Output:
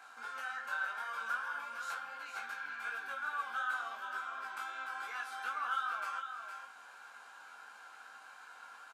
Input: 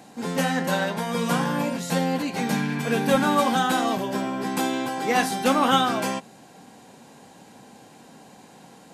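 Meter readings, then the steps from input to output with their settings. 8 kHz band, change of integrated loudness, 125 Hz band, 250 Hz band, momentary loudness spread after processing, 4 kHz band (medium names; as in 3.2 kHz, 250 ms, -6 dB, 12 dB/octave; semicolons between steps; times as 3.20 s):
-22.5 dB, -15.5 dB, under -40 dB, under -40 dB, 16 LU, -20.5 dB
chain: treble shelf 2.9 kHz -10 dB; band-stop 1.9 kHz, Q 6.3; compression 10:1, threshold -35 dBFS, peak gain reduction 20 dB; resonant high-pass 1.4 kHz, resonance Q 6.4; chorus 2.7 Hz, delay 19 ms, depth 3 ms; doubling 13 ms -12 dB; delay 461 ms -7.5 dB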